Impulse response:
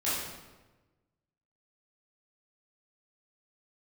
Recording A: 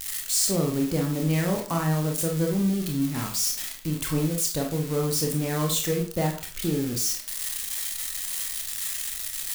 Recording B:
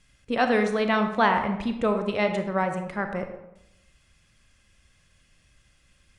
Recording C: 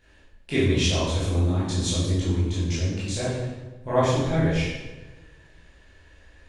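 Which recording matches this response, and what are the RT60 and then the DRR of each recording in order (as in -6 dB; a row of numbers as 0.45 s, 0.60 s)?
C; 0.40 s, 0.90 s, 1.2 s; 0.5 dB, 5.5 dB, -11.0 dB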